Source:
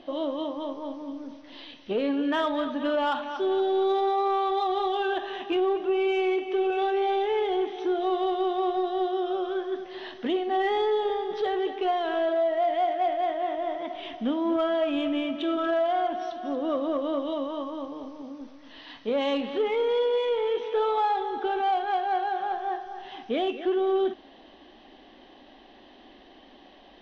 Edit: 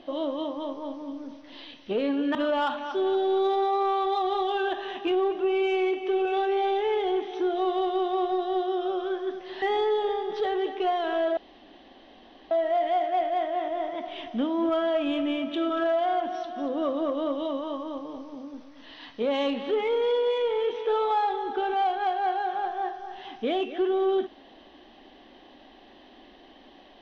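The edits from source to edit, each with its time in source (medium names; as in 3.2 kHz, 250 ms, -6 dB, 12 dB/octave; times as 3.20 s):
2.35–2.80 s: delete
10.07–10.63 s: delete
12.38 s: insert room tone 1.14 s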